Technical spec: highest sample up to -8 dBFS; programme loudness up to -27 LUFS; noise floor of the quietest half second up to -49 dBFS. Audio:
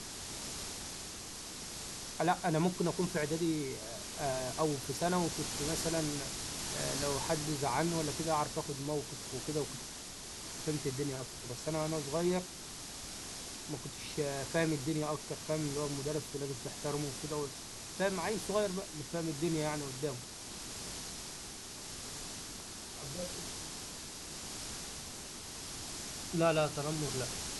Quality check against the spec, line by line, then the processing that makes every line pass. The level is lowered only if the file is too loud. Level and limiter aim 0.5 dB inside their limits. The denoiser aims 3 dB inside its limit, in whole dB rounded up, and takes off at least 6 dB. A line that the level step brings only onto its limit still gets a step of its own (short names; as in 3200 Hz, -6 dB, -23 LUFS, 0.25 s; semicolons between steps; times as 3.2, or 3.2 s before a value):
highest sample -18.0 dBFS: OK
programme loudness -37.0 LUFS: OK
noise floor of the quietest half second -46 dBFS: fail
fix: denoiser 6 dB, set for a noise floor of -46 dBFS